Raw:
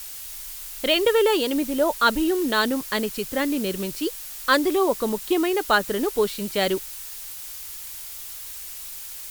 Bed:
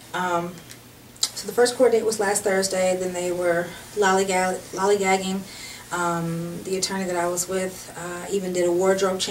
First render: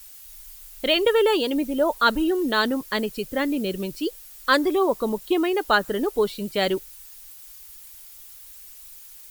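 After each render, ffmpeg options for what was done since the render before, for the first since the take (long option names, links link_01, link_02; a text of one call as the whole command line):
ffmpeg -i in.wav -af "afftdn=noise_reduction=11:noise_floor=-37" out.wav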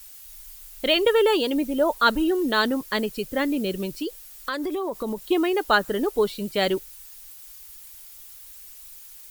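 ffmpeg -i in.wav -filter_complex "[0:a]asettb=1/sr,asplit=3[link_01][link_02][link_03];[link_01]atrim=end=4.024[link_04];[link_02]atrim=start=4.02:end=5.3,asetpts=PTS-STARTPTS,afade=type=in:duration=0.004:curve=qsin,afade=type=out:start_time=1.276:duration=0.004:curve=qsin,acompressor=threshold=-24dB:ratio=10:attack=3.2:release=140:knee=1:detection=peak[link_05];[link_03]atrim=start=5.296[link_06];[link_04][link_05]acrossfade=duration=0.004:curve1=hsin:curve2=qsin[link_07];[link_07][link_06]acrossfade=duration=0.004:curve1=qsin:curve2=hsin" out.wav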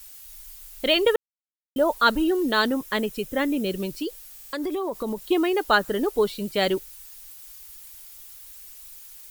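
ffmpeg -i in.wav -filter_complex "[0:a]asettb=1/sr,asplit=3[link_01][link_02][link_03];[link_01]atrim=end=2.724[link_04];[link_02]atrim=start=2.72:end=3.66,asetpts=PTS-STARTPTS,afade=type=in:duration=0.004:curve=qsin,afade=type=out:start_time=0.936:duration=0.004:curve=qsin,bandreject=frequency=4500:width=7[link_05];[link_03]atrim=start=3.656[link_06];[link_04][link_05]acrossfade=duration=0.004:curve1=hsin:curve2=qsin[link_07];[link_07][link_06]acrossfade=duration=0.004:curve1=qsin:curve2=hsin,asplit=7[link_08][link_09][link_10][link_11][link_12][link_13][link_14];[link_08]atrim=end=1.16,asetpts=PTS-STARTPTS,afade=type=out:start_time=1.156:duration=0.004:curve=hsin[link_15];[link_09]atrim=start=1.16:end=1.76,asetpts=PTS-STARTPTS,volume=0[link_16];[link_10]atrim=start=1.76:end=4.382,asetpts=PTS-STARTPTS,afade=type=in:duration=0.004:curve=hsin[link_17];[link_11]atrim=start=4.328:end=4.382[link_18];[link_12]atrim=start=4.328:end=4.382[link_19];[link_13]atrim=start=4.328:end=4.382[link_20];[link_14]atrim=start=4.528[link_21];[link_15][link_16][link_17]concat=n=3:v=0:a=1[link_22];[link_22][link_18]acrossfade=duration=0.004:curve1=hsin:curve2=hsin[link_23];[link_23][link_19]acrossfade=duration=0.004:curve1=hsin:curve2=hsin[link_24];[link_24][link_20]acrossfade=duration=0.004:curve1=hsin:curve2=hsin[link_25];[link_25][link_21]acrossfade=duration=0.004:curve1=hsin:curve2=hsin" out.wav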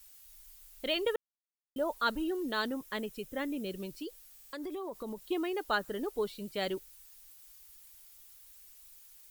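ffmpeg -i in.wav -af "volume=-11.5dB" out.wav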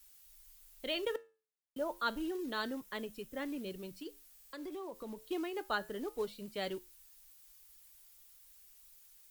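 ffmpeg -i in.wav -filter_complex "[0:a]flanger=delay=6.8:depth=3.6:regen=-82:speed=0.3:shape=sinusoidal,acrossover=split=120|620|2000[link_01][link_02][link_03][link_04];[link_02]acrusher=bits=5:mode=log:mix=0:aa=0.000001[link_05];[link_01][link_05][link_03][link_04]amix=inputs=4:normalize=0" out.wav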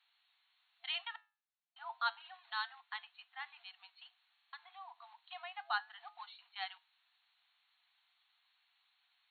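ffmpeg -i in.wav -af "afftfilt=real='re*between(b*sr/4096,680,4400)':imag='im*between(b*sr/4096,680,4400)':win_size=4096:overlap=0.75" out.wav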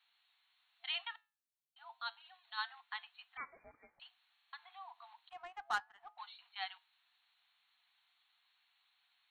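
ffmpeg -i in.wav -filter_complex "[0:a]asplit=3[link_01][link_02][link_03];[link_01]afade=type=out:start_time=1.13:duration=0.02[link_04];[link_02]equalizer=frequency=1100:width_type=o:width=2.9:gain=-9,afade=type=in:start_time=1.13:duration=0.02,afade=type=out:start_time=2.57:duration=0.02[link_05];[link_03]afade=type=in:start_time=2.57:duration=0.02[link_06];[link_04][link_05][link_06]amix=inputs=3:normalize=0,asettb=1/sr,asplit=3[link_07][link_08][link_09];[link_07]atrim=end=3.374[link_10];[link_08]atrim=start=3.37:end=4,asetpts=PTS-STARTPTS,afade=type=in:duration=0.004:curve=qsin,afade=type=out:start_time=0.626:duration=0.004:curve=qsin,lowpass=frequency=2600:width_type=q:width=0.5098,lowpass=frequency=2600:width_type=q:width=0.6013,lowpass=frequency=2600:width_type=q:width=0.9,lowpass=frequency=2600:width_type=q:width=2.563,afreqshift=-3100[link_11];[link_09]atrim=start=3.996[link_12];[link_10][link_11]acrossfade=duration=0.004:curve1=hsin:curve2=qsin[link_13];[link_13][link_12]acrossfade=duration=0.004:curve1=qsin:curve2=hsin,asettb=1/sr,asplit=3[link_14][link_15][link_16];[link_14]atrim=end=5.294[link_17];[link_15]atrim=start=5.29:end=6.18,asetpts=PTS-STARTPTS,afade=type=in:duration=0.004:curve=qsin,afade=type=out:start_time=0.886:duration=0.004:curve=qsin,adynamicsmooth=sensitivity=6.5:basefreq=1100[link_18];[link_16]atrim=start=6.176[link_19];[link_17][link_18]acrossfade=duration=0.004:curve1=hsin:curve2=qsin[link_20];[link_20][link_19]acrossfade=duration=0.004:curve1=qsin:curve2=hsin" out.wav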